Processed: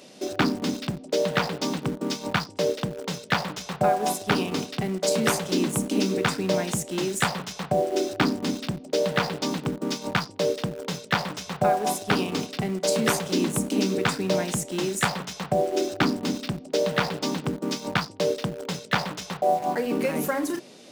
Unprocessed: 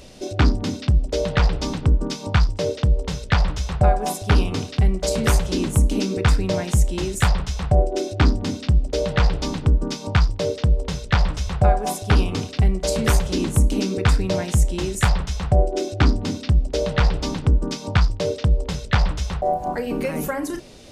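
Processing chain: high-pass 170 Hz 24 dB/octave; in parallel at -11 dB: bit crusher 5-bit; on the sum: trim -2.5 dB

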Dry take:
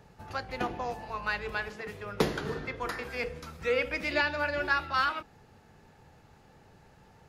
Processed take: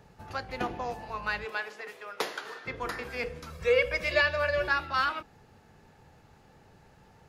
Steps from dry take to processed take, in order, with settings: 1.44–2.65 s: high-pass 330 Hz -> 930 Hz 12 dB/octave; 3.50–4.68 s: comb 1.8 ms, depth 83%

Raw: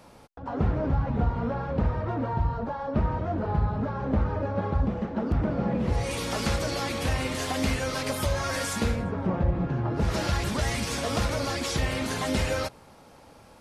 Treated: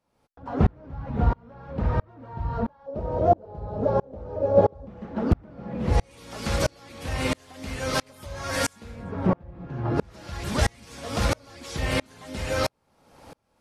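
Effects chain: 2.86–4.87 s: FFT filter 240 Hz 0 dB, 550 Hz +13 dB, 1.1 kHz -3 dB, 1.9 kHz -8 dB, 5.9 kHz +2 dB; sawtooth tremolo in dB swelling 1.5 Hz, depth 35 dB; trim +8 dB

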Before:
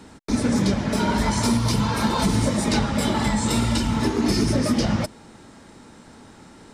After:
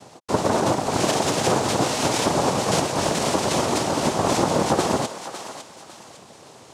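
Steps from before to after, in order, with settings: noise-vocoded speech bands 2; thinning echo 554 ms, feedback 38%, high-pass 1 kHz, level -8.5 dB

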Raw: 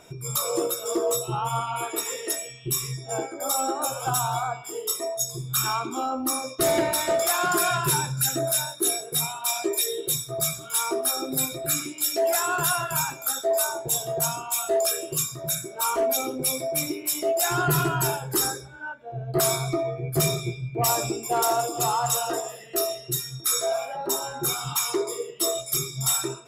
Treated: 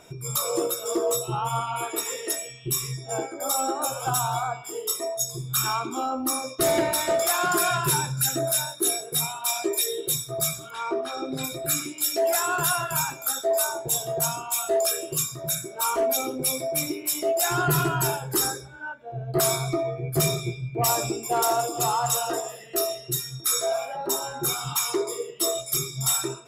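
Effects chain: 10.69–11.43 s: low-pass 2.1 kHz -> 4.3 kHz 12 dB/octave

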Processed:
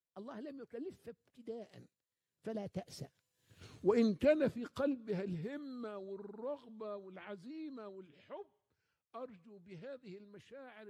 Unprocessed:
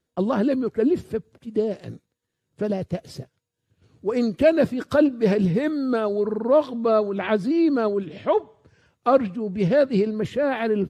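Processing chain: Doppler pass-by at 3.61 s, 19 m/s, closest 2.5 m; tape noise reduction on one side only encoder only; trim +1.5 dB

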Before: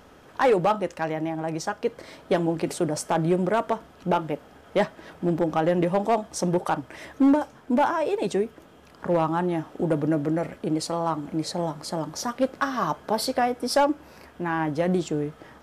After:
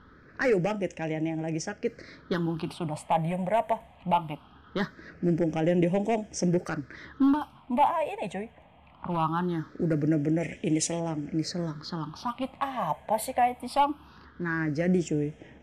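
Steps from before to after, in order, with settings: time-frequency box 10.41–11.00 s, 1.7–11 kHz +8 dB; phase shifter stages 6, 0.21 Hz, lowest notch 350–1200 Hz; level-controlled noise filter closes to 2.6 kHz, open at -24.5 dBFS

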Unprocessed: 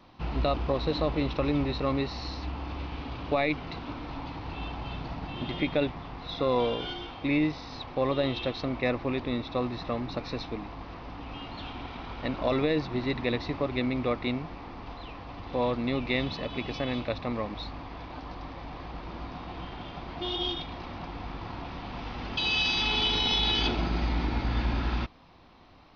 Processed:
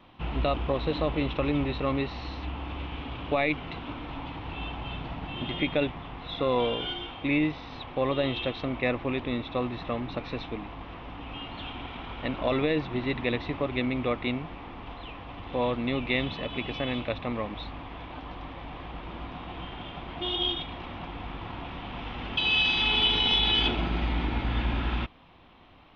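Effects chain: resonant high shelf 3.9 kHz -6 dB, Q 3

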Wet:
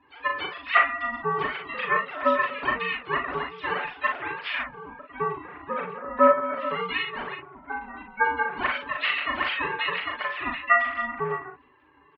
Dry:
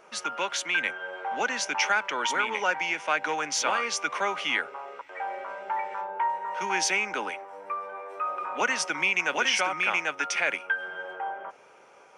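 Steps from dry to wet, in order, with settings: formants replaced by sine waves; steep high-pass 380 Hz 36 dB/octave; comb 6.4 ms, depth 79%; harmony voices -7 st -9 dB, +7 st -16 dB; ring modulator 360 Hz; on a send: early reflections 39 ms -4.5 dB, 55 ms -9.5 dB

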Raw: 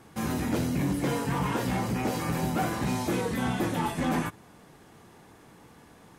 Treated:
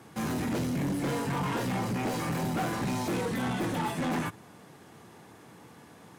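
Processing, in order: self-modulated delay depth 0.055 ms; high-pass 86 Hz 24 dB/octave; saturation -27 dBFS, distortion -12 dB; trim +1.5 dB

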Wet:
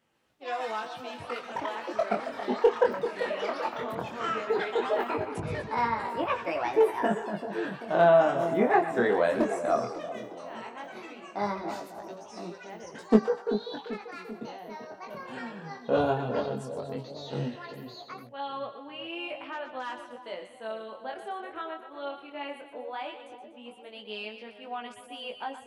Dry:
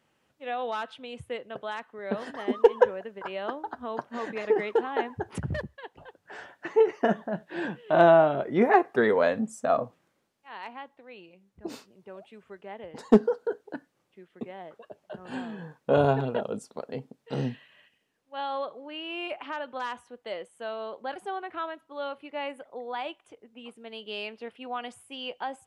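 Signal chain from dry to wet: two-band feedback delay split 810 Hz, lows 389 ms, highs 122 ms, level -9.5 dB; ever faster or slower copies 121 ms, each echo +6 st, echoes 3, each echo -6 dB; chorus 0.16 Hz, delay 17.5 ms, depth 7.6 ms

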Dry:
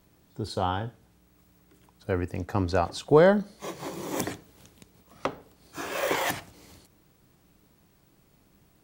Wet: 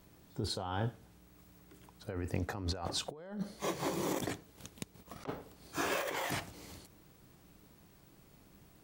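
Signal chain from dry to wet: 4.14–5.29 s: transient shaper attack +9 dB, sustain -5 dB; compressor with a negative ratio -33 dBFS, ratio -1; trim -5 dB

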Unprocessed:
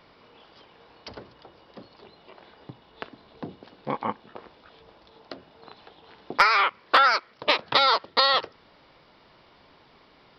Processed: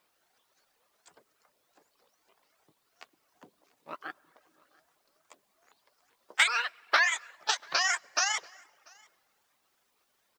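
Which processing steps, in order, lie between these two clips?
sawtooth pitch modulation +9.5 st, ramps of 381 ms; on a send at -8 dB: reverberation RT60 2.4 s, pre-delay 76 ms; on the sum: reverb removal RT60 0.92 s; high-pass 520 Hz 6 dB/octave; in parallel at -10.5 dB: word length cut 8-bit, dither triangular; on the sum: delay 689 ms -19.5 dB; upward expansion 1.5:1, over -41 dBFS; trim -5 dB

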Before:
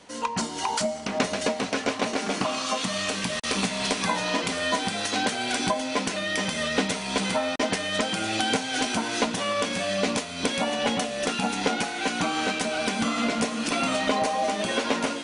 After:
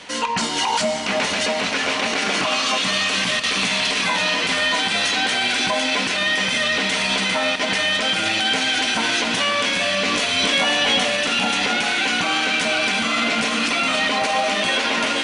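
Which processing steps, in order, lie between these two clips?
peaking EQ 2.6 kHz +11 dB 2.3 oct; peak limiter -18 dBFS, peak gain reduction 14.5 dB; 10.06–11.08 s: doubling 20 ms -2.5 dB; on a send: echo that smears into a reverb 504 ms, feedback 48%, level -10 dB; on the sum: trim +6 dB

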